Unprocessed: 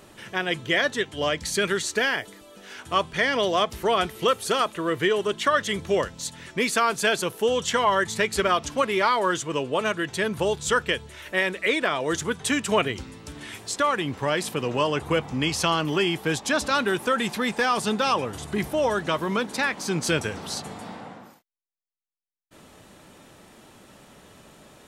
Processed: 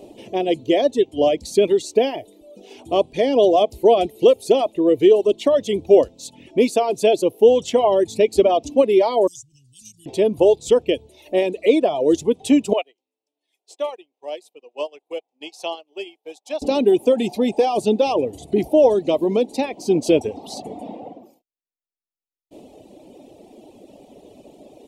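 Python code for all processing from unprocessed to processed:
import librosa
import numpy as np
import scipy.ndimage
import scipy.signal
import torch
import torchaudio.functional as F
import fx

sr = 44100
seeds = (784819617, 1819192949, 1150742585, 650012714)

y = fx.chain(x, sr, fx.ellip_bandstop(low_hz=120.0, high_hz=5600.0, order=3, stop_db=70),
    fx.low_shelf(hz=320.0, db=-7.5),
    fx.band_squash(depth_pct=100), at=(9.27, 10.06))
y = fx.chain(y, sr, fx.highpass(hz=750.0, slope=12),
    fx.upward_expand(threshold_db=-41.0, expansion=2.5), at=(12.73, 16.62))
y = fx.dereverb_blind(y, sr, rt60_s=1.1)
y = fx.curve_eq(y, sr, hz=(170.0, 280.0, 730.0, 1500.0, 2500.0, 7300.0), db=(0, 13, 10, -24, -1, -4))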